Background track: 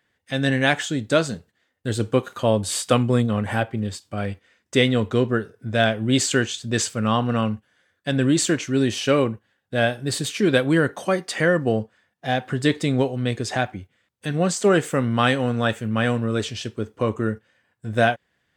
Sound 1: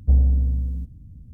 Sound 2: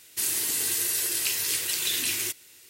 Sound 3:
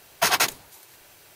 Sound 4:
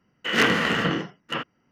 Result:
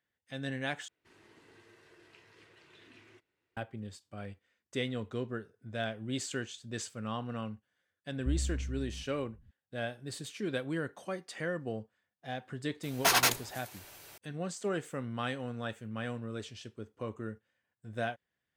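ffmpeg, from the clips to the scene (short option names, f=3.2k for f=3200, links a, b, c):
-filter_complex "[0:a]volume=-16.5dB[a];[2:a]lowpass=1.4k[b];[3:a]asoftclip=type=tanh:threshold=-19dB[c];[a]asplit=2[d][e];[d]atrim=end=0.884[f];[b]atrim=end=2.69,asetpts=PTS-STARTPTS,volume=-17dB[g];[e]atrim=start=3.566[h];[1:a]atrim=end=1.33,asetpts=PTS-STARTPTS,volume=-16.5dB,afade=t=in:d=0.004:c=hsin,afade=t=out:st=1.326:d=0.004:c=hsin,adelay=360738S[i];[c]atrim=end=1.35,asetpts=PTS-STARTPTS,volume=-0.5dB,afade=t=in:d=0.004:c=hsin,afade=t=out:st=1.346:d=0.004:c=hsin,adelay=12830[j];[f][g]acrossfade=d=0.004:c1=hsin:c2=hsin[k];[k][h]acrossfade=d=0.004:c1=hsin:c2=hsin[l];[l][i][j]amix=inputs=3:normalize=0"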